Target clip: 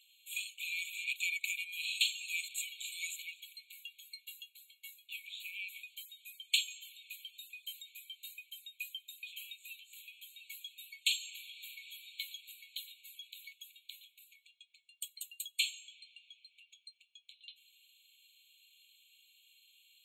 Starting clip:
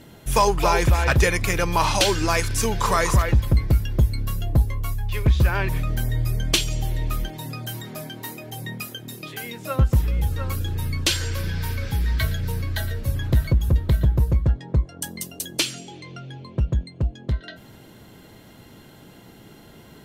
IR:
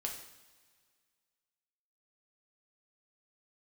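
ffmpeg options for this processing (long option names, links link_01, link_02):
-af "highshelf=frequency=2300:gain=-6.5,afftfilt=real='re*eq(mod(floor(b*sr/1024/2200),2),1)':imag='im*eq(mod(floor(b*sr/1024/2200),2),1)':win_size=1024:overlap=0.75,volume=-3dB"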